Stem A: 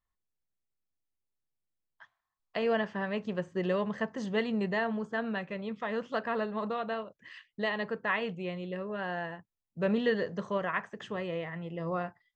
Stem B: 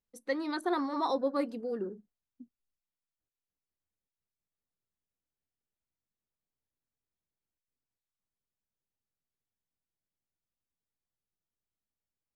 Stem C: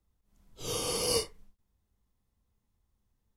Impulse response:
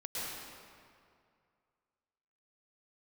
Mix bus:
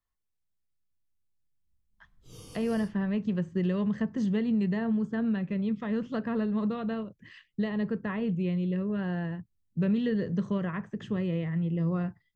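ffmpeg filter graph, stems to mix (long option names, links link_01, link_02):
-filter_complex "[0:a]volume=-1.5dB[link_01];[2:a]adelay=1650,volume=-17.5dB[link_02];[link_01][link_02]amix=inputs=2:normalize=0,asubboost=boost=8.5:cutoff=240,acrossover=split=100|1200[link_03][link_04][link_05];[link_03]acompressor=threshold=-53dB:ratio=4[link_06];[link_04]acompressor=threshold=-25dB:ratio=4[link_07];[link_05]acompressor=threshold=-44dB:ratio=4[link_08];[link_06][link_07][link_08]amix=inputs=3:normalize=0"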